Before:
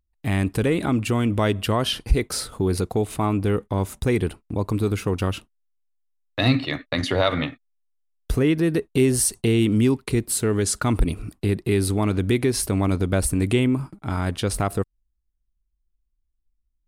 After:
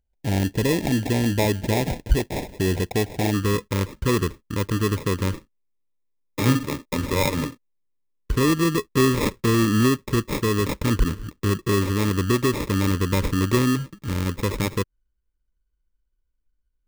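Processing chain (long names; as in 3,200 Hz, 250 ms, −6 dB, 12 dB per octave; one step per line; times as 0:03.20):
sample-rate reduction 1,500 Hz, jitter 0%
Butterworth band-reject 1,200 Hz, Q 2.2, from 0:03.33 720 Hz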